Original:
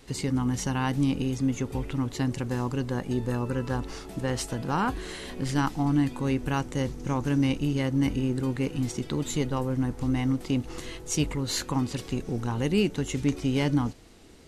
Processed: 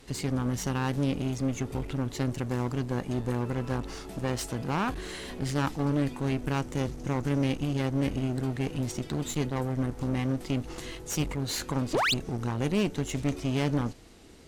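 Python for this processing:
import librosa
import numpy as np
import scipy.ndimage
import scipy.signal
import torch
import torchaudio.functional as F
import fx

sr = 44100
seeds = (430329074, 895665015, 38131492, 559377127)

y = fx.spec_paint(x, sr, seeds[0], shape='rise', start_s=11.93, length_s=0.21, low_hz=270.0, high_hz=4800.0, level_db=-21.0)
y = fx.clip_asym(y, sr, top_db=-35.5, bottom_db=-16.0)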